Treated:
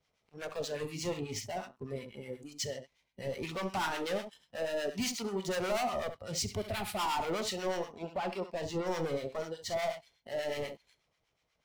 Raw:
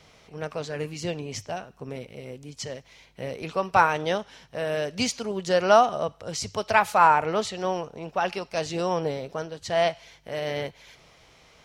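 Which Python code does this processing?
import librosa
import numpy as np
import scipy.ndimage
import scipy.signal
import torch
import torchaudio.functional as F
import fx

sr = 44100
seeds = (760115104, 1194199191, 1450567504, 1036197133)

y = fx.leveller(x, sr, passes=2)
y = 10.0 ** (-21.0 / 20.0) * np.tanh(y / 10.0 ** (-21.0 / 20.0))
y = fx.high_shelf(y, sr, hz=2000.0, db=-9.5, at=(8.16, 8.86), fade=0.02)
y = fx.leveller(y, sr, passes=1)
y = fx.noise_reduce_blind(y, sr, reduce_db=12)
y = fx.graphic_eq_15(y, sr, hz=(100, 1000, 6300), db=(8, -11, -11), at=(6.55, 6.99))
y = fx.room_early_taps(y, sr, ms=(43, 68), db=(-14.5, -9.5))
y = fx.harmonic_tremolo(y, sr, hz=8.2, depth_pct=70, crossover_hz=970.0)
y = y * librosa.db_to_amplitude(-6.5)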